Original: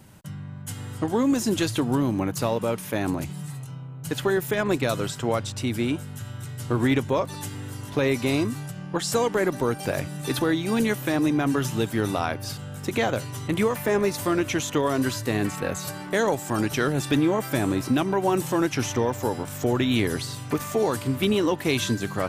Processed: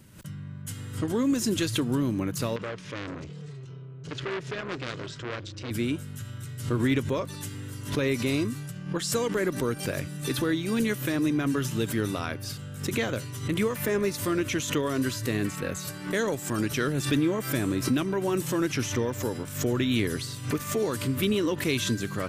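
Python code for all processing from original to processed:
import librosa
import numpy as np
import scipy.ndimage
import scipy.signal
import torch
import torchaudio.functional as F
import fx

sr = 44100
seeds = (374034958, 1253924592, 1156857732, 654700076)

y = fx.chain(x, sr, fx.lowpass(hz=5900.0, slope=24),
    fx.peak_eq(hz=220.0, db=-6.5, octaves=0.35),
    fx.transformer_sat(knee_hz=1900.0), at=(2.56, 5.71))
y = fx.peak_eq(y, sr, hz=790.0, db=-11.0, octaves=0.65)
y = fx.pre_swell(y, sr, db_per_s=110.0)
y = y * librosa.db_to_amplitude(-2.5)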